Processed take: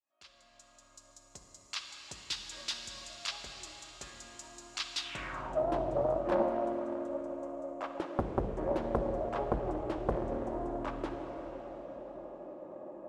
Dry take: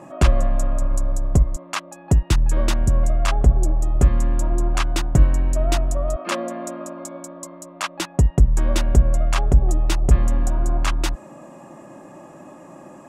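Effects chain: opening faded in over 2.09 s; high shelf 5400 Hz -4.5 dB; plate-style reverb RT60 4.4 s, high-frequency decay 0.95×, DRR 3.5 dB; band-pass sweep 4400 Hz -> 500 Hz, 4.98–5.67; 5.73–6.43 bell 110 Hz +7 dB 2.3 oct; Doppler distortion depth 0.91 ms

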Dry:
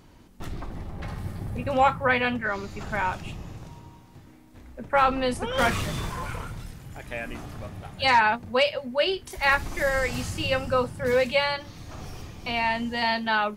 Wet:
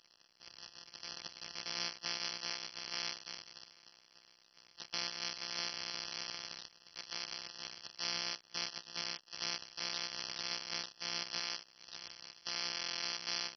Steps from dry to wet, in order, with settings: sample sorter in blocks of 256 samples; compressor 2.5:1, threshold -44 dBFS, peak gain reduction 18.5 dB; AM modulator 65 Hz, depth 65%; sample leveller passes 2; band-pass 4900 Hz, Q 2.3; gate -59 dBFS, range -13 dB; stuck buffer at 12.73, samples 1024, times 12; gain +14 dB; MP2 32 kbps 32000 Hz

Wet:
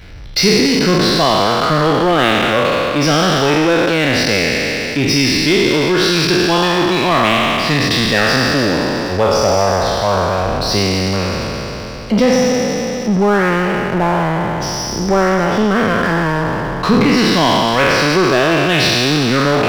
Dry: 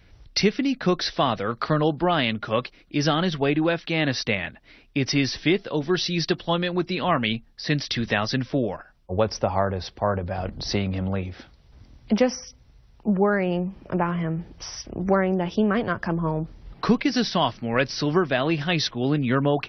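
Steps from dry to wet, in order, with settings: spectral trails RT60 2.95 s; power-law curve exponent 0.7; gain +1 dB

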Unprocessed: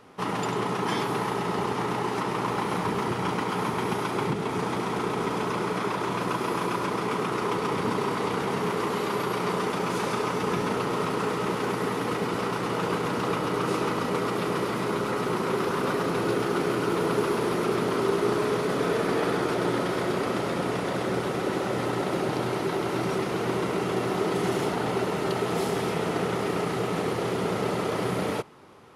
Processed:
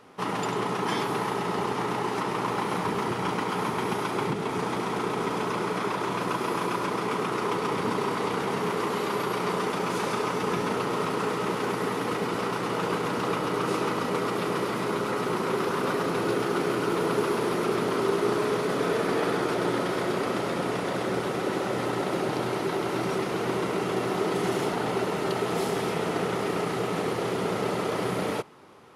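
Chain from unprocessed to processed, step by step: low shelf 100 Hz -7 dB

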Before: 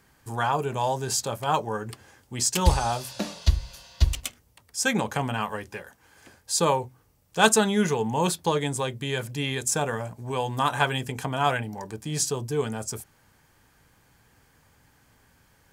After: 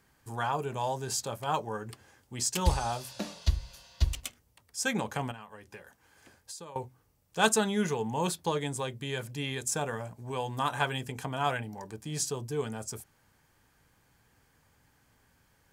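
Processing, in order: 5.31–6.76 compressor 16:1, threshold -36 dBFS, peak gain reduction 19.5 dB; gain -6 dB

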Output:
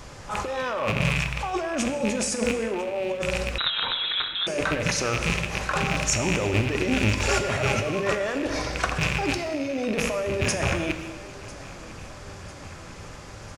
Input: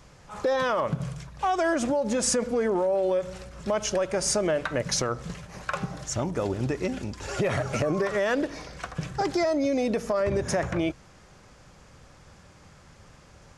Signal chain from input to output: rattling part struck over -39 dBFS, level -24 dBFS; bell 180 Hz -3 dB 0.73 oct; negative-ratio compressor -32 dBFS, ratio -1; feedback echo 0.999 s, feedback 59%, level -20 dB; non-linear reverb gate 0.43 s falling, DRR 6.5 dB; 3.58–4.47 inverted band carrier 3900 Hz; gain +5.5 dB

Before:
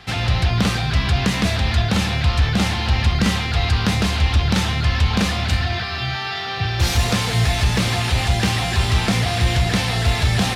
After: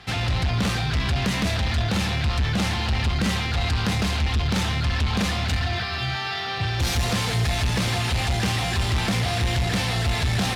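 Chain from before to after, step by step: soft clip -16 dBFS, distortion -13 dB; added harmonics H 7 -36 dB, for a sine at -16 dBFS; gain -1.5 dB

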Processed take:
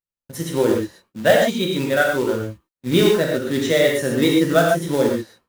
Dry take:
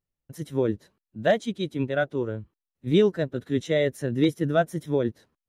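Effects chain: gate with hold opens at -52 dBFS; low shelf 350 Hz -9.5 dB; in parallel at +1 dB: compressor 5:1, threshold -36 dBFS, peak gain reduction 16 dB; on the sum: short-mantissa float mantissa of 2-bit; non-linear reverb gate 0.16 s flat, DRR -1.5 dB; gain +5.5 dB

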